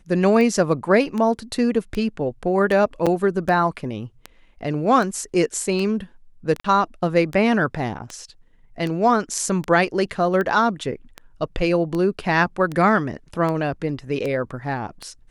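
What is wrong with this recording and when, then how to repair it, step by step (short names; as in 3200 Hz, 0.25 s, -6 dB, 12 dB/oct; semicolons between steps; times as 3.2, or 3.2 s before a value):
tick 78 rpm -15 dBFS
3.06–3.07 gap 6.2 ms
6.6–6.64 gap 44 ms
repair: de-click; interpolate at 3.06, 6.2 ms; interpolate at 6.6, 44 ms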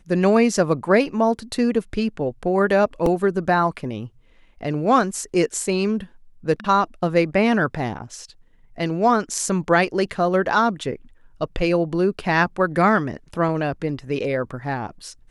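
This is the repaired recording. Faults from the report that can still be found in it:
none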